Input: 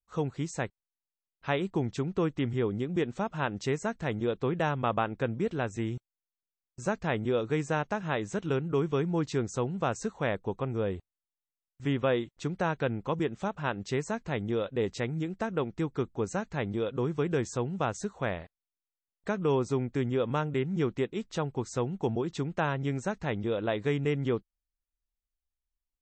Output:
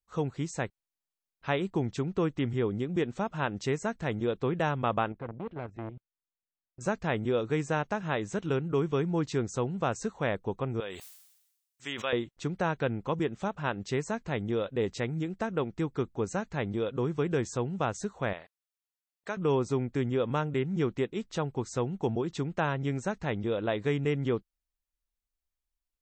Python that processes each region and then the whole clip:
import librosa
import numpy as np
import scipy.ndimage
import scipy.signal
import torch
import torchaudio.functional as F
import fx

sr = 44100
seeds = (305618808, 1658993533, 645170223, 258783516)

y = fx.chain(x, sr, fx.air_absorb(metres=410.0),
    fx.level_steps(step_db=11),
    fx.transformer_sat(knee_hz=730.0), at=(5.12, 6.81))
y = fx.chain(y, sr, fx.highpass(hz=1300.0, slope=6),
    fx.high_shelf(hz=3100.0, db=11.5),
    fx.sustainer(db_per_s=59.0), at=(10.8, 12.13))
y = fx.chain(y, sr, fx.highpass(hz=220.0, slope=6),
    fx.low_shelf(hz=480.0, db=-9.0), at=(18.33, 19.37))